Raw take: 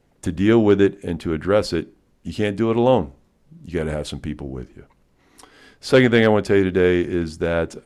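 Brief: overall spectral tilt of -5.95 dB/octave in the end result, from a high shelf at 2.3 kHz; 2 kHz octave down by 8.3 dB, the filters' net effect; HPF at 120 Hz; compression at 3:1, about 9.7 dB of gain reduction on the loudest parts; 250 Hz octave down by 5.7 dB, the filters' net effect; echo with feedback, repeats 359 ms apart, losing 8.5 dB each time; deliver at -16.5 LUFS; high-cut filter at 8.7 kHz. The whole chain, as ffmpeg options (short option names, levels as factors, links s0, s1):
-af "highpass=120,lowpass=8700,equalizer=f=250:t=o:g=-7.5,equalizer=f=2000:t=o:g=-8.5,highshelf=f=2300:g=-4.5,acompressor=threshold=0.0501:ratio=3,aecho=1:1:359|718|1077|1436:0.376|0.143|0.0543|0.0206,volume=5.01"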